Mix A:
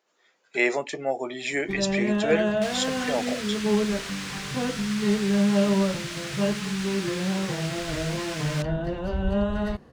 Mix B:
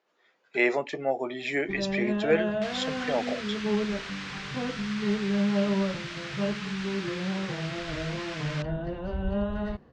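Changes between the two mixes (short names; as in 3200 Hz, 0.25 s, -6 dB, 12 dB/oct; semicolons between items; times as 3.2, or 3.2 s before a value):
first sound -4.0 dB; master: add air absorption 150 m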